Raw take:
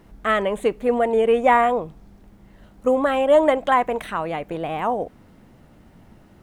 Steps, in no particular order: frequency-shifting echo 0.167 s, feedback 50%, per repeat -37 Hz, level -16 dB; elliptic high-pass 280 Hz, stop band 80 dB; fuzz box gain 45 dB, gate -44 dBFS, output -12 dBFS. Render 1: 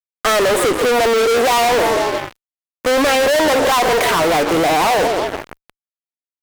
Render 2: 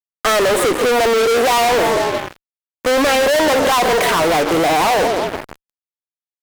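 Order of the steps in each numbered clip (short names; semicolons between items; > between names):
frequency-shifting echo > elliptic high-pass > fuzz box; elliptic high-pass > frequency-shifting echo > fuzz box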